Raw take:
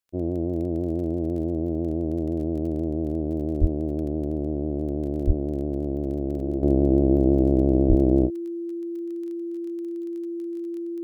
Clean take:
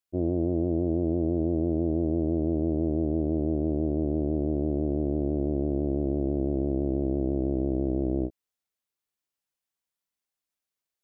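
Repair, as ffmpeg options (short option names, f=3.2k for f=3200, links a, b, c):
-filter_complex "[0:a]adeclick=t=4,bandreject=f=340:w=30,asplit=3[a][b][c];[a]afade=t=out:st=3.6:d=0.02[d];[b]highpass=f=140:w=0.5412,highpass=f=140:w=1.3066,afade=t=in:st=3.6:d=0.02,afade=t=out:st=3.72:d=0.02[e];[c]afade=t=in:st=3.72:d=0.02[f];[d][e][f]amix=inputs=3:normalize=0,asplit=3[g][h][i];[g]afade=t=out:st=5.26:d=0.02[j];[h]highpass=f=140:w=0.5412,highpass=f=140:w=1.3066,afade=t=in:st=5.26:d=0.02,afade=t=out:st=5.38:d=0.02[k];[i]afade=t=in:st=5.38:d=0.02[l];[j][k][l]amix=inputs=3:normalize=0,asplit=3[m][n][o];[m]afade=t=out:st=7.88:d=0.02[p];[n]highpass=f=140:w=0.5412,highpass=f=140:w=1.3066,afade=t=in:st=7.88:d=0.02,afade=t=out:st=8:d=0.02[q];[o]afade=t=in:st=8:d=0.02[r];[p][q][r]amix=inputs=3:normalize=0,asetnsamples=n=441:p=0,asendcmd='6.63 volume volume -8dB',volume=0dB"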